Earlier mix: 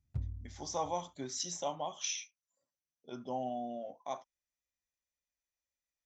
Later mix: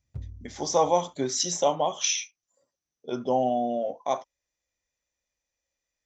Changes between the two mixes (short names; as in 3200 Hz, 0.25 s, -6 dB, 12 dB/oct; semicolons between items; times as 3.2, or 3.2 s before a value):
speech +11.0 dB; master: add bell 460 Hz +6.5 dB 0.69 oct